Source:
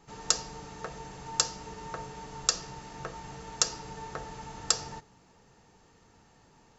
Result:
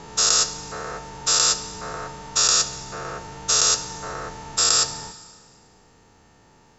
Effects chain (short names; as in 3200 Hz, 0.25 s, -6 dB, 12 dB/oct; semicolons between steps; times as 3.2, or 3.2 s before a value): spectral dilation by 0.24 s; Schroeder reverb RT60 1.7 s, combs from 25 ms, DRR 14 dB